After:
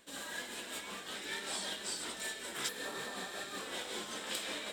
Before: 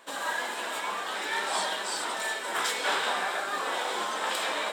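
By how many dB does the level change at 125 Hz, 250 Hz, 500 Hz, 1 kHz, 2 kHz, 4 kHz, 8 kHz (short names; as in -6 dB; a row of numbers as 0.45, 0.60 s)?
n/a, -4.0 dB, -11.0 dB, -17.0 dB, -11.5 dB, -7.5 dB, -5.0 dB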